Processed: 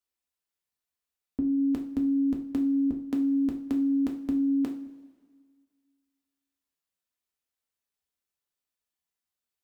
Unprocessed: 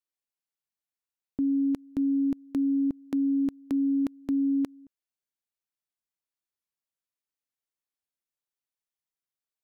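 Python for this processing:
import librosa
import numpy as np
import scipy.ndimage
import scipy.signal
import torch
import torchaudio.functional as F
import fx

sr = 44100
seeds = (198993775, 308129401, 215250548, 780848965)

y = fx.rev_double_slope(x, sr, seeds[0], early_s=0.36, late_s=1.8, knee_db=-17, drr_db=0.5)
y = fx.end_taper(y, sr, db_per_s=340.0)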